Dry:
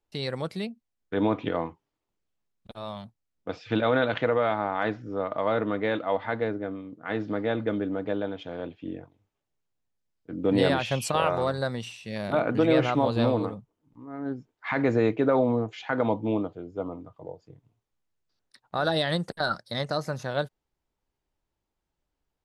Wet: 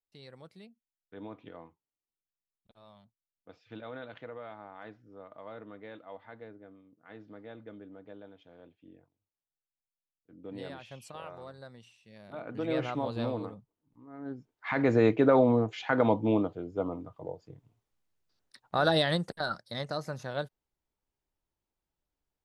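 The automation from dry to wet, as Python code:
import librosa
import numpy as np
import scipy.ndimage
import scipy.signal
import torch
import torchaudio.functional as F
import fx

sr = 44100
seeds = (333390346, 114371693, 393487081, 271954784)

y = fx.gain(x, sr, db=fx.line((12.26, -19.5), (12.75, -9.0), (14.13, -9.0), (15.07, 0.5), (18.96, 0.5), (19.48, -6.0)))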